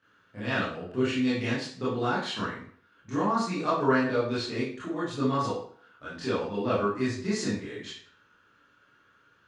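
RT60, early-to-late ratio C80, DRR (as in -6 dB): 0.50 s, 7.0 dB, -11.5 dB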